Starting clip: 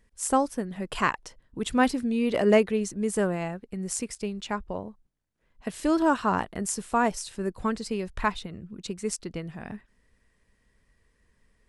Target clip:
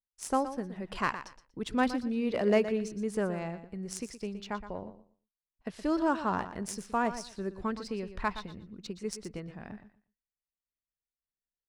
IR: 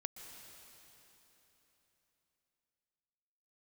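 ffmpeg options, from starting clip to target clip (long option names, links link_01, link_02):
-filter_complex "[0:a]aexciter=amount=1.8:drive=4.3:freq=4400,agate=range=-34dB:threshold=-50dB:ratio=16:detection=peak,adynamicsmooth=sensitivity=2:basefreq=4300,asplit=2[link_01][link_02];[link_02]aecho=0:1:119|238|357:0.251|0.0502|0.01[link_03];[link_01][link_03]amix=inputs=2:normalize=0,volume=-5.5dB"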